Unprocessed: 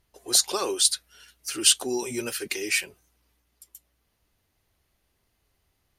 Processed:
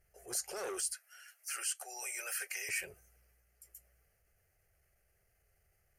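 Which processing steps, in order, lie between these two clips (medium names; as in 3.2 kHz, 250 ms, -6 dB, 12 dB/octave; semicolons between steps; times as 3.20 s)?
0.94–2.69 s: high-pass 730 Hz 24 dB/octave; compression 8:1, threshold -28 dBFS, peak gain reduction 14.5 dB; transient shaper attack -7 dB, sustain +3 dB; static phaser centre 1 kHz, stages 6; transformer saturation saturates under 2.3 kHz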